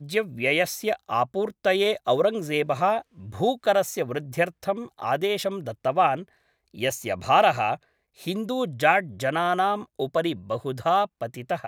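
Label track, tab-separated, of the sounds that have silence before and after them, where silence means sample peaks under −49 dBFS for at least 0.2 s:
6.740000	7.830000	sound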